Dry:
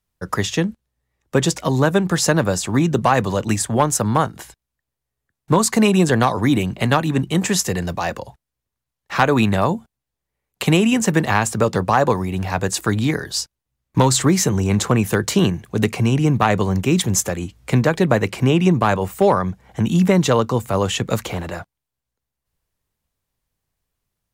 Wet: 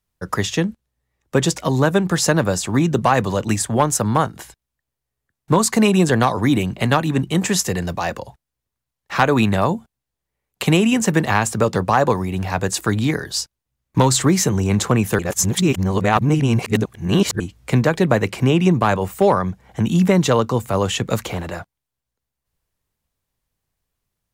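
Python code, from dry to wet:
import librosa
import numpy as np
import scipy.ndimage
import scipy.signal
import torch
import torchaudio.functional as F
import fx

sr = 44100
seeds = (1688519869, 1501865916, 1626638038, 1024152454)

y = fx.edit(x, sr, fx.reverse_span(start_s=15.19, length_s=2.21), tone=tone)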